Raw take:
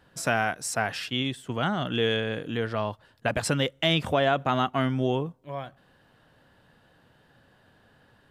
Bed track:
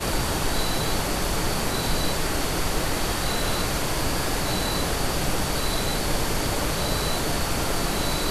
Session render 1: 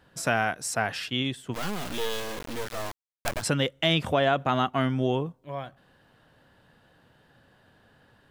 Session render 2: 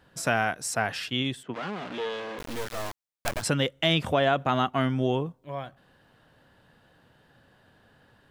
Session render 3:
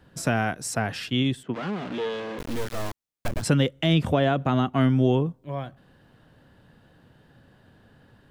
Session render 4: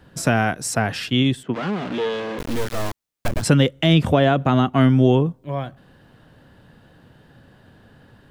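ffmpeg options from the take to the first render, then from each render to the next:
-filter_complex "[0:a]asplit=3[a][b][c];[a]afade=t=out:st=1.53:d=0.02[d];[b]acrusher=bits=3:dc=4:mix=0:aa=0.000001,afade=t=in:st=1.53:d=0.02,afade=t=out:st=3.41:d=0.02[e];[c]afade=t=in:st=3.41:d=0.02[f];[d][e][f]amix=inputs=3:normalize=0"
-filter_complex "[0:a]asettb=1/sr,asplit=3[a][b][c];[a]atrim=end=1.434[d];[b]atrim=start=1.43:end=2.39,asetpts=PTS-STARTPTS,afade=t=in:d=0.004:c=qsin,afade=t=out:st=0.956:d=0.004:c=qsin,highpass=190,lowpass=2.7k[e];[c]atrim=start=2.386[f];[d][e]acrossfade=d=0.004:c1=hsin:c2=qsin[g];[g][f]acrossfade=d=0.004:c1=qsin:c2=hsin"
-filter_complex "[0:a]acrossover=split=390[a][b];[a]acontrast=88[c];[b]alimiter=limit=-16.5dB:level=0:latency=1:release=210[d];[c][d]amix=inputs=2:normalize=0"
-af "volume=5.5dB"

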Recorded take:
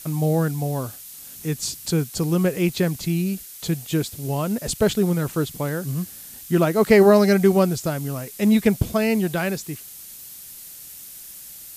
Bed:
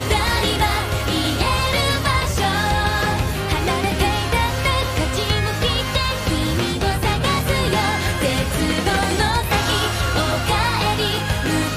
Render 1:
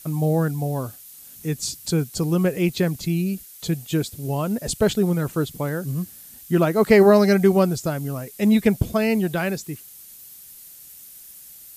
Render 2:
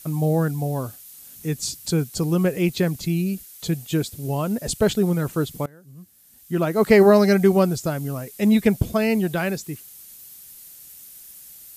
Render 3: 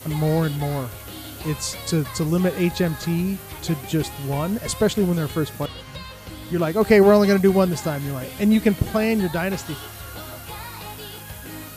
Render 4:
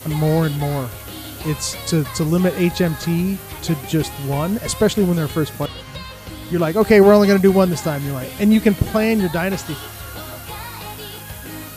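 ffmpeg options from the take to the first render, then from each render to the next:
-af "afftdn=nr=6:nf=-41"
-filter_complex "[0:a]asplit=2[a][b];[a]atrim=end=5.66,asetpts=PTS-STARTPTS,afade=t=out:st=5.656:d=0.004:c=hsin:silence=0.0749894[c];[b]atrim=start=5.66,asetpts=PTS-STARTPTS,afade=t=in:d=1.19:c=qua:silence=0.0749894[d];[c][d]concat=n=2:v=0:a=1"
-filter_complex "[1:a]volume=-17dB[a];[0:a][a]amix=inputs=2:normalize=0"
-af "volume=3.5dB,alimiter=limit=-1dB:level=0:latency=1"

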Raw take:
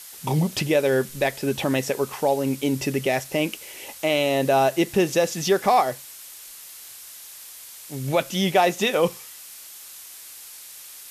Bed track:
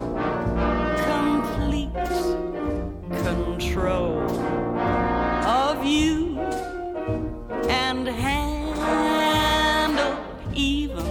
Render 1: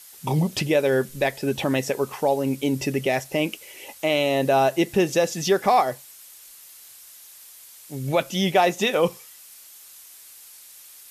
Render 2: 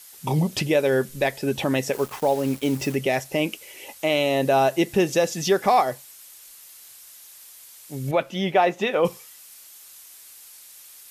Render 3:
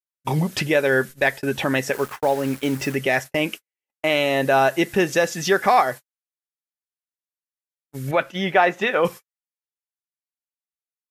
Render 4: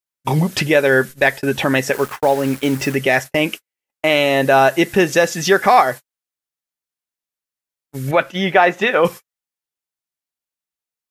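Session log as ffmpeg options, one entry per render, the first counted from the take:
-af "afftdn=nr=6:nf=-42"
-filter_complex "[0:a]asettb=1/sr,asplit=3[a][b][c];[a]atrim=end=1.934[d];[b]atrim=start=1.93:end=2.95,asetpts=PTS-STARTPTS,afade=t=in:d=0.004:c=qsin,afade=t=out:st=1.016:d=0.004:c=qsin,acrusher=bits=5:mix=0:aa=0.5[e];[c]atrim=start=2.946[f];[d][e]acrossfade=d=0.004:c1=hsin:c2=qsin[g];[g][f]acrossfade=d=0.004:c1=qsin:c2=hsin,asettb=1/sr,asplit=3[h][i][j];[h]atrim=end=8.114[k];[i]atrim=start=8.11:end=9.05,asetpts=PTS-STARTPTS,afade=t=in:d=0.004:c=qsin,afade=t=out:st=0.936:d=0.004:c=qsin,bass=f=250:g=-4,treble=f=4k:g=-15[l];[j]atrim=start=9.046[m];[k][l]acrossfade=d=0.004:c1=hsin:c2=qsin[n];[n][m]acrossfade=d=0.004:c1=qsin:c2=hsin"
-af "agate=range=-57dB:threshold=-32dB:ratio=16:detection=peak,equalizer=f=1.6k:t=o:w=0.91:g=10"
-af "volume=5dB,alimiter=limit=-1dB:level=0:latency=1"

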